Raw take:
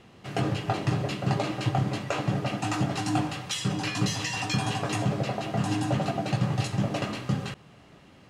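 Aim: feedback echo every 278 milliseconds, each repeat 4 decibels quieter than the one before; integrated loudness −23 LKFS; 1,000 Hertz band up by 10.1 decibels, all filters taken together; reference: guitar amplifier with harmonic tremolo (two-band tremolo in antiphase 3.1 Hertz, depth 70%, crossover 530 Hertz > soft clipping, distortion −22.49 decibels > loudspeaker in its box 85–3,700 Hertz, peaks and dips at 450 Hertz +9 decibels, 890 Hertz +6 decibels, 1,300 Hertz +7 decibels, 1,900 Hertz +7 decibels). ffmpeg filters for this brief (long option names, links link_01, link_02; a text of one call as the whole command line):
ffmpeg -i in.wav -filter_complex "[0:a]equalizer=frequency=1000:width_type=o:gain=7.5,aecho=1:1:278|556|834|1112|1390|1668|1946|2224|2502:0.631|0.398|0.25|0.158|0.0994|0.0626|0.0394|0.0249|0.0157,acrossover=split=530[link_01][link_02];[link_01]aeval=exprs='val(0)*(1-0.7/2+0.7/2*cos(2*PI*3.1*n/s))':channel_layout=same[link_03];[link_02]aeval=exprs='val(0)*(1-0.7/2-0.7/2*cos(2*PI*3.1*n/s))':channel_layout=same[link_04];[link_03][link_04]amix=inputs=2:normalize=0,asoftclip=threshold=-16.5dB,highpass=85,equalizer=frequency=450:width_type=q:width=4:gain=9,equalizer=frequency=890:width_type=q:width=4:gain=6,equalizer=frequency=1300:width_type=q:width=4:gain=7,equalizer=frequency=1900:width_type=q:width=4:gain=7,lowpass=frequency=3700:width=0.5412,lowpass=frequency=3700:width=1.3066,volume=3.5dB" out.wav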